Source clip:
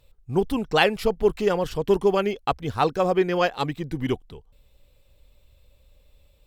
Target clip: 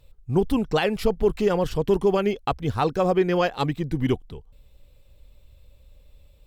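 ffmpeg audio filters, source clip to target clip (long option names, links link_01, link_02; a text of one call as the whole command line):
ffmpeg -i in.wav -af "alimiter=limit=-12.5dB:level=0:latency=1:release=75,lowshelf=frequency=300:gain=5.5" out.wav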